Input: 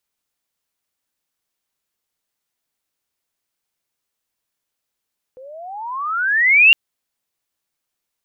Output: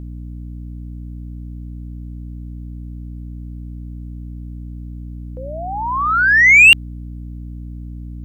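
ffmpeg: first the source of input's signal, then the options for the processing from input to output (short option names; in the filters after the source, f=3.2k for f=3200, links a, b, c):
-f lavfi -i "aevalsrc='pow(10,(-5+31*(t/1.36-1))/20)*sin(2*PI*500*1.36/(30*log(2)/12)*(exp(30*log(2)/12*t/1.36)-1))':d=1.36:s=44100"
-af "equalizer=f=5.3k:w=1.5:g=-2.5,acontrast=48,aeval=exprs='val(0)+0.0355*(sin(2*PI*60*n/s)+sin(2*PI*2*60*n/s)/2+sin(2*PI*3*60*n/s)/3+sin(2*PI*4*60*n/s)/4+sin(2*PI*5*60*n/s)/5)':c=same"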